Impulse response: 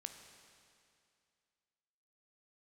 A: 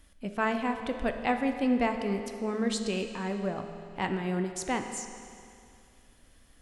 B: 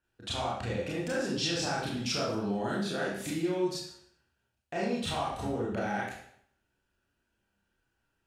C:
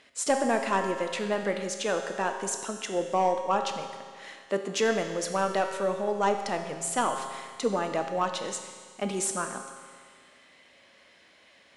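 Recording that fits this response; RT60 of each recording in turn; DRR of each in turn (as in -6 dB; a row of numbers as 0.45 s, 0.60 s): A; 2.4 s, 0.60 s, 1.8 s; 6.0 dB, -6.5 dB, 4.5 dB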